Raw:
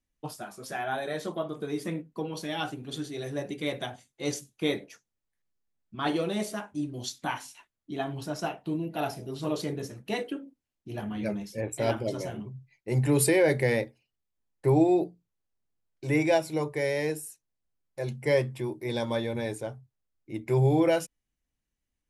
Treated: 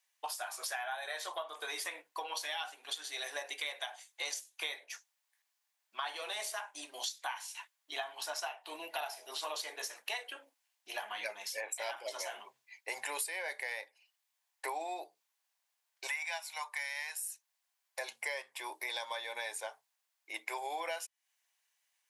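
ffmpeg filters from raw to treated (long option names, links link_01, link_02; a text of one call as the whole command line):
ffmpeg -i in.wav -filter_complex "[0:a]asettb=1/sr,asplit=3[link_01][link_02][link_03];[link_01]atrim=end=16.074[link_04];[link_02]atrim=start=16.07:end=17.23,asetpts=PTS-STARTPTS,afade=type=in:duration=0.004:curve=qsin,afade=type=out:start_time=1.156:duration=0.004:curve=qsin,highpass=frequency=810:width=0.5412,highpass=frequency=810:width=1.3066[link_05];[link_03]atrim=start=17.226[link_06];[link_04][link_05]acrossfade=duration=0.004:curve1=hsin:curve2=qsin[link_07];[link_07][link_06]acrossfade=duration=0.004:curve1=qsin:curve2=hsin,highpass=frequency=820:width=0.5412,highpass=frequency=820:width=1.3066,equalizer=frequency=1300:width_type=o:width=0.2:gain=-7.5,acompressor=threshold=-48dB:ratio=8,volume=11.5dB" out.wav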